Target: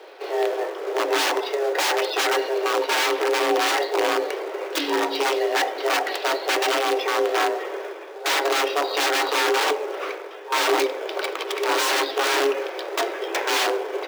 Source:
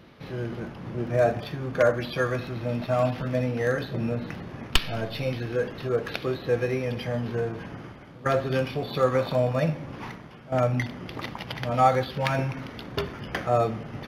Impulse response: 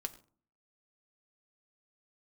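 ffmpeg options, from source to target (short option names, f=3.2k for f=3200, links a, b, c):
-filter_complex "[0:a]acrusher=bits=4:mode=log:mix=0:aa=0.000001,aeval=exprs='(mod(15*val(0)+1,2)-1)/15':c=same,afreqshift=280,asplit=2[a][b];[1:a]atrim=start_sample=2205,lowpass=7.4k[c];[b][c]afir=irnorm=-1:irlink=0,volume=1dB[d];[a][d]amix=inputs=2:normalize=0,volume=2dB"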